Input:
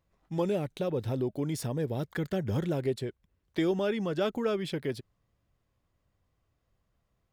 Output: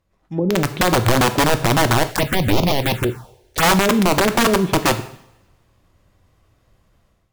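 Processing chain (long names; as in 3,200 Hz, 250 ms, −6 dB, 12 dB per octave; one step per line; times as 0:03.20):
treble cut that deepens with the level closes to 380 Hz, closed at −26.5 dBFS
automatic gain control gain up to 12 dB
wrap-around overflow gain 15 dB
coupled-rooms reverb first 0.66 s, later 1.7 s, from −22 dB, DRR 9 dB
0:02.11–0:03.63: phaser swept by the level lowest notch 160 Hz, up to 1,700 Hz, full sweep at −16 dBFS
level +5 dB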